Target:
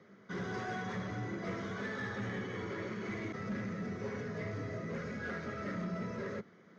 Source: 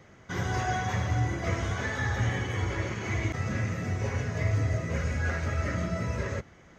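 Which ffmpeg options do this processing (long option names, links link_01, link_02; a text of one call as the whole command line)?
ffmpeg -i in.wav -af "highpass=frequency=130:width=0.5412,highpass=frequency=130:width=1.3066,equalizer=frequency=140:width_type=q:width=4:gain=-5,equalizer=frequency=200:width_type=q:width=4:gain=10,equalizer=frequency=420:width_type=q:width=4:gain=7,equalizer=frequency=810:width_type=q:width=4:gain=-6,equalizer=frequency=1300:width_type=q:width=4:gain=3,equalizer=frequency=2700:width_type=q:width=4:gain=-8,lowpass=frequency=5200:width=0.5412,lowpass=frequency=5200:width=1.3066,asoftclip=type=tanh:threshold=-25dB,volume=-6.5dB" out.wav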